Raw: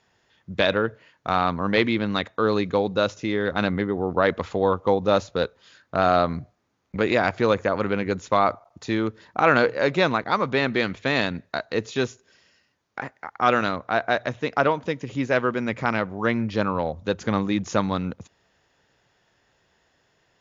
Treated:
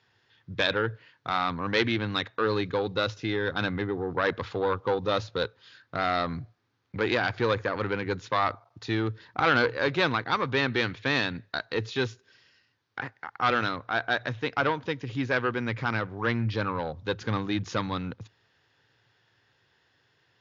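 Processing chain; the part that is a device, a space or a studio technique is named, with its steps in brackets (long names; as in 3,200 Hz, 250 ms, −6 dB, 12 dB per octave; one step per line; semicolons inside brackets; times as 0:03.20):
guitar amplifier (tube saturation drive 11 dB, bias 0.45; bass and treble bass +1 dB, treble +12 dB; loudspeaker in its box 89–4,300 Hz, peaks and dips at 110 Hz +10 dB, 200 Hz −7 dB, 630 Hz −7 dB, 1,600 Hz +4 dB)
level −1.5 dB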